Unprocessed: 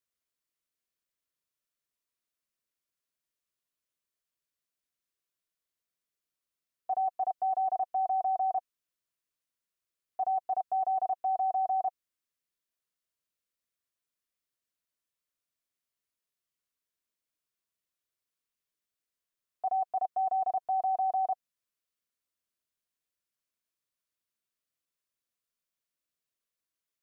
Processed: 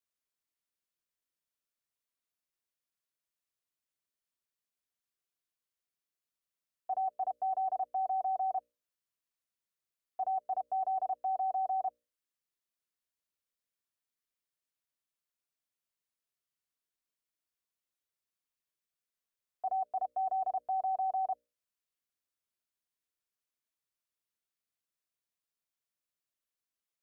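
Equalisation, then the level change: hum notches 60/120/180/240/300/360/420/480/540/600 Hz; -3.5 dB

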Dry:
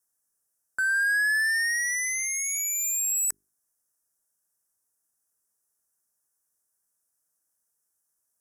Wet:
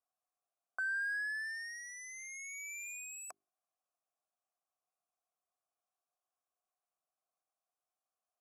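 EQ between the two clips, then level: vowel filter a; +8.0 dB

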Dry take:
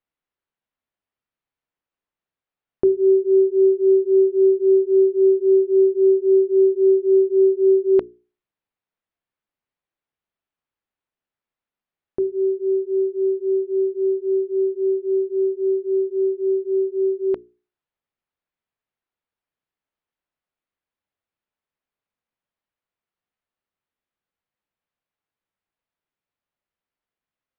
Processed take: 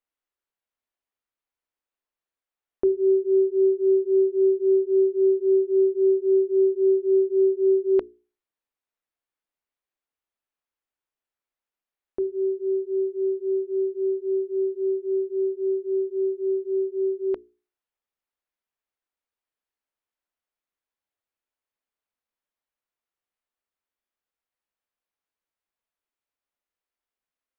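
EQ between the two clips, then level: peaking EQ 140 Hz -13 dB 0.99 oct; -3.0 dB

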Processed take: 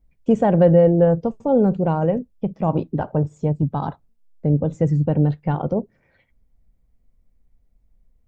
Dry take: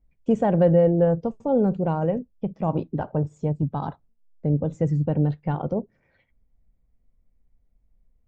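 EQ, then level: flat; +4.0 dB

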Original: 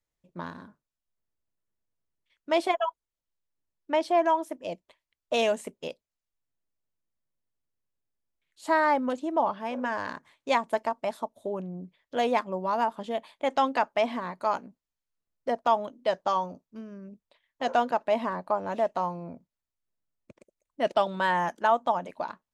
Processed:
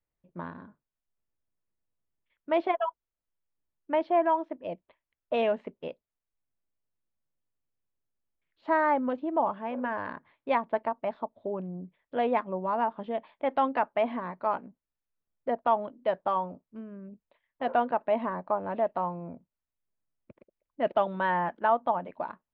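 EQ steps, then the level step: low-pass 3.4 kHz 12 dB/octave; distance through air 340 m; 0.0 dB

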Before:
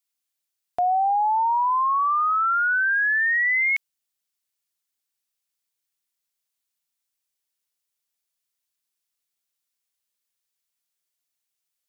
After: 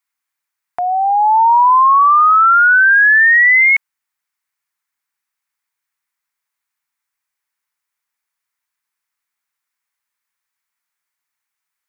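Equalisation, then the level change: high-order bell 1.4 kHz +12 dB; 0.0 dB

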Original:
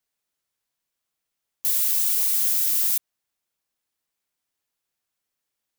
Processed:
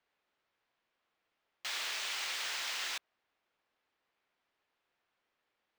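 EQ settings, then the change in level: distance through air 160 m; tone controls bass -10 dB, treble -10 dB; +9.0 dB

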